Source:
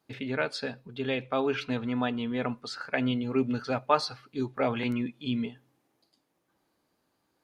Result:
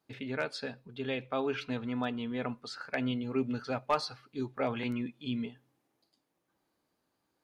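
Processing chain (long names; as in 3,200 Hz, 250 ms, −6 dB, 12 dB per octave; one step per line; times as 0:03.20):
hard clipping −15 dBFS, distortion −23 dB
level −4.5 dB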